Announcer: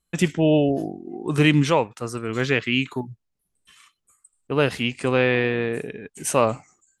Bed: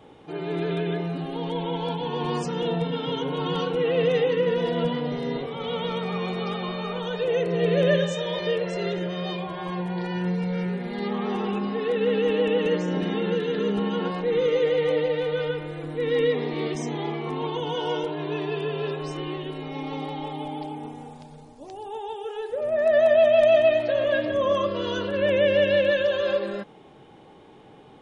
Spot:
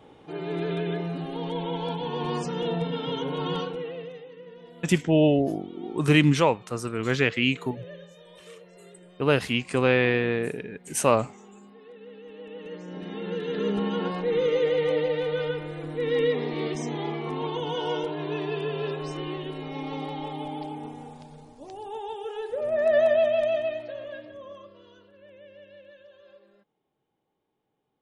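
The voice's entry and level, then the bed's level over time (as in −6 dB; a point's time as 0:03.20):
4.70 s, −1.5 dB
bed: 0:03.55 −2 dB
0:04.24 −22.5 dB
0:12.25 −22.5 dB
0:13.67 −1.5 dB
0:22.99 −1.5 dB
0:25.19 −29.5 dB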